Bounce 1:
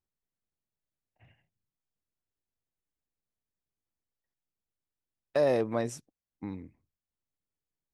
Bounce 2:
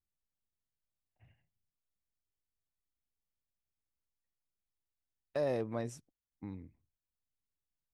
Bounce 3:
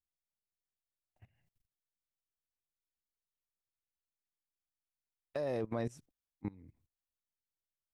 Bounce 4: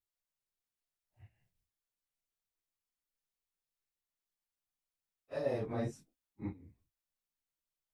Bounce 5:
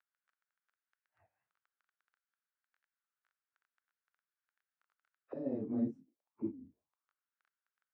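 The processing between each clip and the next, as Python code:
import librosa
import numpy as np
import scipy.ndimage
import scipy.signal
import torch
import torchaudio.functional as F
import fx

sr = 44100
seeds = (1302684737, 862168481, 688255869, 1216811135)

y1 = fx.low_shelf(x, sr, hz=120.0, db=10.5)
y1 = y1 * 10.0 ** (-8.5 / 20.0)
y2 = fx.level_steps(y1, sr, step_db=21)
y2 = y2 * 10.0 ** (7.0 / 20.0)
y3 = fx.phase_scramble(y2, sr, seeds[0], window_ms=100)
y4 = fx.dmg_crackle(y3, sr, seeds[1], per_s=11.0, level_db=-54.0)
y4 = fx.auto_wah(y4, sr, base_hz=260.0, top_hz=1500.0, q=4.4, full_db=-44.0, direction='down')
y4 = fx.record_warp(y4, sr, rpm=33.33, depth_cents=160.0)
y4 = y4 * 10.0 ** (9.5 / 20.0)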